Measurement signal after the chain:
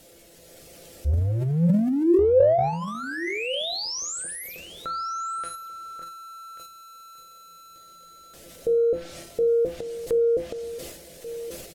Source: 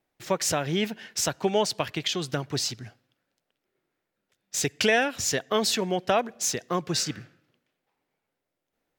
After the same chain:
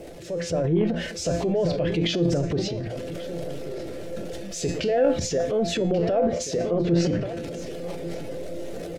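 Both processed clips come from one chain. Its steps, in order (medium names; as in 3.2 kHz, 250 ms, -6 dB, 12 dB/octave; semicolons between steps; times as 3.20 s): jump at every zero crossing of -33.5 dBFS; resonant low shelf 730 Hz +10 dB, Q 3; peak limiter -9.5 dBFS; reverb removal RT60 0.54 s; low-pass that closes with the level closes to 1.8 kHz, closed at -15 dBFS; peaking EQ 63 Hz +14 dB 0.26 oct; hum notches 60/120/180/240/300/360 Hz; feedback comb 170 Hz, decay 0.39 s, harmonics all, mix 80%; delay 1136 ms -14 dB; level rider gain up to 6 dB; transient shaper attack -3 dB, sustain +9 dB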